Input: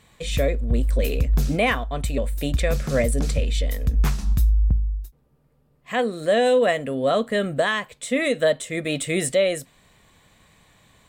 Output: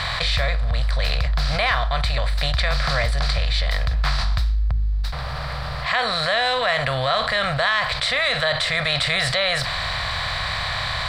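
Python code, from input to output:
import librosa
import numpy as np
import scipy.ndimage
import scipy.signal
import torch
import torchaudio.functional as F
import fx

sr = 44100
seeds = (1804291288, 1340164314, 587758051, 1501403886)

y = fx.bin_compress(x, sr, power=0.6)
y = fx.curve_eq(y, sr, hz=(130.0, 320.0, 700.0, 1300.0, 2800.0, 4600.0, 6600.0, 12000.0), db=(0, -29, 0, 7, 0, 14, -9, -16))
y = fx.env_flatten(y, sr, amount_pct=70)
y = y * 10.0 ** (-4.5 / 20.0)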